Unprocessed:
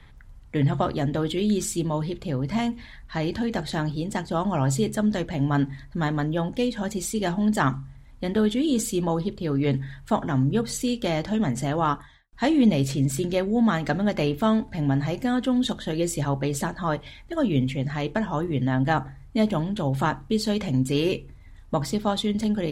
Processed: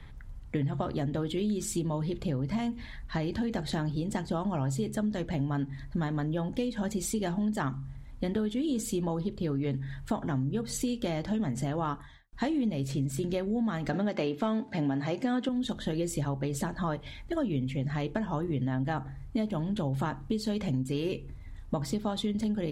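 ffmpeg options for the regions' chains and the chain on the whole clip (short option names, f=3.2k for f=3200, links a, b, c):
-filter_complex "[0:a]asettb=1/sr,asplit=3[a][b][c];[a]atrim=end=13.934[d];[b]atrim=start=13.93:end=15.49,asetpts=PTS-STARTPTS,afade=t=in:d=0.004:c=qsin,afade=t=out:st=1.556:d=0.004:c=qsin,highpass=230,lowpass=7.1k,acontrast=87[e];[c]atrim=start=15.486[f];[d][e]acrossfade=d=0.004:c1=hsin:c2=qsin[g];[g][f]acrossfade=d=0.004:c1=qsin:c2=hsin,lowshelf=f=500:g=4.5,acompressor=threshold=-26dB:ratio=6,volume=-1.5dB"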